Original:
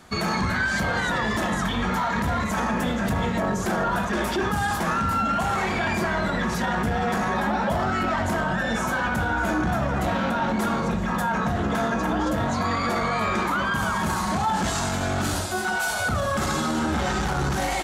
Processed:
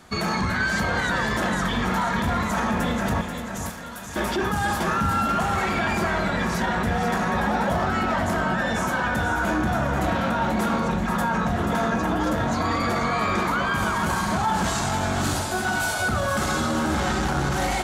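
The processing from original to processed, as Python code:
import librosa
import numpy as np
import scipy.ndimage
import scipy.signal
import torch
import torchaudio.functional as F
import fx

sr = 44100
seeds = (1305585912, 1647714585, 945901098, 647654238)

y = fx.differentiator(x, sr, at=(3.21, 4.16))
y = fx.echo_feedback(y, sr, ms=485, feedback_pct=41, wet_db=-7.5)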